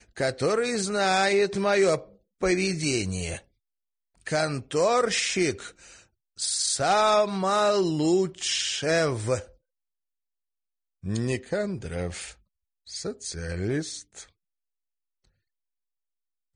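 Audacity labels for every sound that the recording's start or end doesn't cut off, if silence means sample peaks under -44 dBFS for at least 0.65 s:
4.210000	9.490000	sound
11.030000	14.240000	sound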